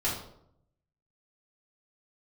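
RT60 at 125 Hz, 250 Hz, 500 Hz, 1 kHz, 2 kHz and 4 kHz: 1.1 s, 0.85 s, 0.80 s, 0.65 s, 0.50 s, 0.45 s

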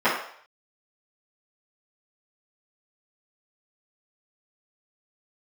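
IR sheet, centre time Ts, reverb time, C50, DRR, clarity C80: 40 ms, 0.60 s, 3.5 dB, -14.5 dB, 7.5 dB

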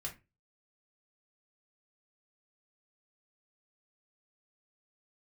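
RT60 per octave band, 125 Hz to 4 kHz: 0.40 s, 0.35 s, 0.30 s, 0.25 s, 0.25 s, 0.20 s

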